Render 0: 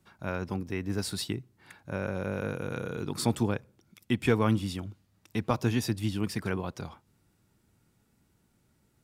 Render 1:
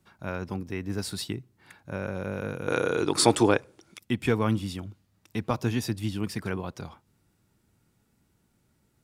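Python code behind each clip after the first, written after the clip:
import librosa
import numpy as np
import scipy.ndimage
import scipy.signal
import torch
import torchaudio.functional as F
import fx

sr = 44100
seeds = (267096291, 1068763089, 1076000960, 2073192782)

y = fx.spec_box(x, sr, start_s=2.68, length_s=1.31, low_hz=270.0, high_hz=11000.0, gain_db=11)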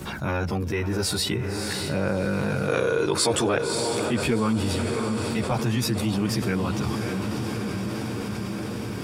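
y = fx.chorus_voices(x, sr, voices=2, hz=0.24, base_ms=14, depth_ms=1.1, mix_pct=60)
y = fx.echo_diffused(y, sr, ms=598, feedback_pct=61, wet_db=-12.0)
y = fx.env_flatten(y, sr, amount_pct=70)
y = F.gain(torch.from_numpy(y), -1.0).numpy()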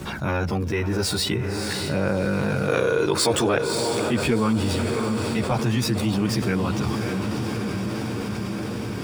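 y = scipy.ndimage.median_filter(x, 3, mode='constant')
y = F.gain(torch.from_numpy(y), 2.0).numpy()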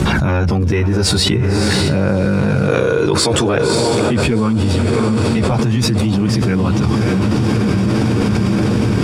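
y = scipy.signal.sosfilt(scipy.signal.butter(2, 10000.0, 'lowpass', fs=sr, output='sos'), x)
y = fx.low_shelf(y, sr, hz=270.0, db=7.5)
y = fx.env_flatten(y, sr, amount_pct=100)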